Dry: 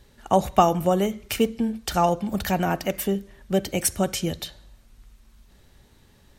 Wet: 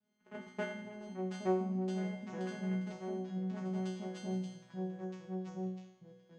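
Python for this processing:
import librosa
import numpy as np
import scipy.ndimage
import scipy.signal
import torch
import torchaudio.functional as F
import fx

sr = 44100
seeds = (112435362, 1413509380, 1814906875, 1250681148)

p1 = scipy.signal.sosfilt(scipy.signal.butter(4, 5000.0, 'lowpass', fs=sr, output='sos'), x)
p2 = fx.notch(p1, sr, hz=590.0, q=12.0)
p3 = fx.level_steps(p2, sr, step_db=16)
p4 = 10.0 ** (-17.0 / 20.0) * np.tanh(p3 / 10.0 ** (-17.0 / 20.0))
p5 = fx.vocoder(p4, sr, bands=4, carrier='saw', carrier_hz=210.0)
p6 = fx.echo_pitch(p5, sr, ms=795, semitones=-2, count=2, db_per_echo=-6.0)
p7 = fx.resonator_bank(p6, sr, root=47, chord='fifth', decay_s=0.64)
p8 = p7 + fx.echo_thinned(p7, sr, ms=99, feedback_pct=85, hz=470.0, wet_db=-23.0, dry=0)
y = p8 * 10.0 ** (11.0 / 20.0)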